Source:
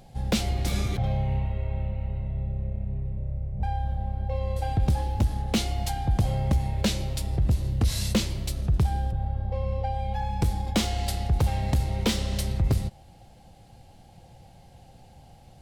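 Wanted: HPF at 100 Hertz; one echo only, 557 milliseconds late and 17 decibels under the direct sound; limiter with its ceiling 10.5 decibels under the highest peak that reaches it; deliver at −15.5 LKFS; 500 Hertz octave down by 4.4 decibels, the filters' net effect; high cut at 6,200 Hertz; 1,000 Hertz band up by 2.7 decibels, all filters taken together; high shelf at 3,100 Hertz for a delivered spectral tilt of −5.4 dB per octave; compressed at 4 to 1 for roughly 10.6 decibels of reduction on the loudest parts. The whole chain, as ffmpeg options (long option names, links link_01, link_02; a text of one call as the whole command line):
ffmpeg -i in.wav -af "highpass=100,lowpass=6200,equalizer=frequency=500:width_type=o:gain=-7.5,equalizer=frequency=1000:width_type=o:gain=7,highshelf=frequency=3100:gain=3,acompressor=threshold=-34dB:ratio=4,alimiter=level_in=5.5dB:limit=-24dB:level=0:latency=1,volume=-5.5dB,aecho=1:1:557:0.141,volume=23.5dB" out.wav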